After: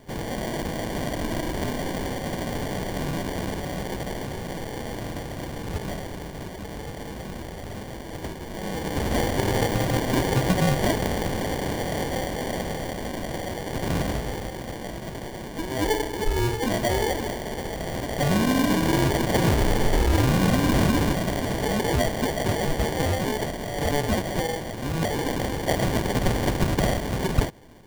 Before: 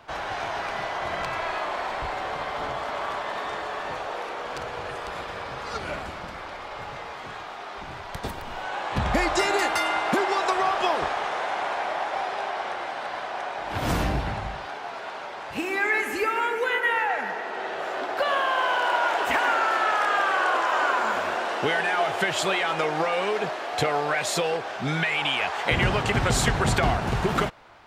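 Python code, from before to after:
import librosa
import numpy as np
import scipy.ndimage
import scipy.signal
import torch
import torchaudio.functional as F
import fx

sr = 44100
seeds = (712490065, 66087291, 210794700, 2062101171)

y = fx.peak_eq(x, sr, hz=1200.0, db=10.0, octaves=0.82)
y = fx.sample_hold(y, sr, seeds[0], rate_hz=1300.0, jitter_pct=0)
y = y * librosa.db_to_amplitude(-3.5)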